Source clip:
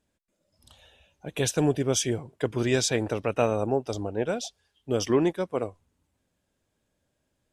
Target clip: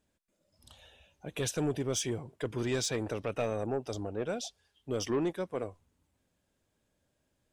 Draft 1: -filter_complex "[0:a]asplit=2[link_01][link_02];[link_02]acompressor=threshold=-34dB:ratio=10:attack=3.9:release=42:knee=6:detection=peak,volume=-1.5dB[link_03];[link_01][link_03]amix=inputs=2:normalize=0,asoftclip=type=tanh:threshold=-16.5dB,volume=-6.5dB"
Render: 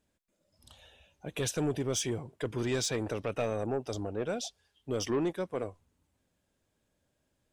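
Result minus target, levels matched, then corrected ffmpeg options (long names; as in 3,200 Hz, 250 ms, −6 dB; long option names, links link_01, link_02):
downward compressor: peak gain reduction −6.5 dB
-filter_complex "[0:a]asplit=2[link_01][link_02];[link_02]acompressor=threshold=-41dB:ratio=10:attack=3.9:release=42:knee=6:detection=peak,volume=-1.5dB[link_03];[link_01][link_03]amix=inputs=2:normalize=0,asoftclip=type=tanh:threshold=-16.5dB,volume=-6.5dB"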